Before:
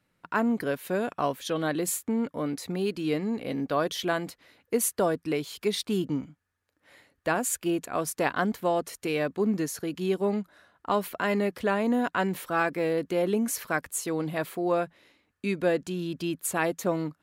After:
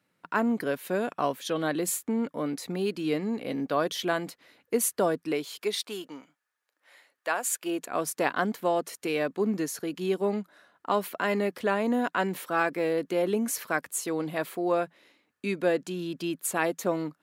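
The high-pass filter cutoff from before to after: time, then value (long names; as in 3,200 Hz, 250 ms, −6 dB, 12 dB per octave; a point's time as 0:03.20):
0:05.10 150 Hz
0:06.04 630 Hz
0:07.48 630 Hz
0:07.97 190 Hz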